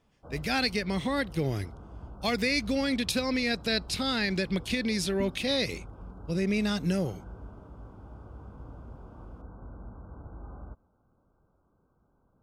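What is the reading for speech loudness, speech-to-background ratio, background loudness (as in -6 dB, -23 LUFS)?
-29.0 LUFS, 18.0 dB, -47.0 LUFS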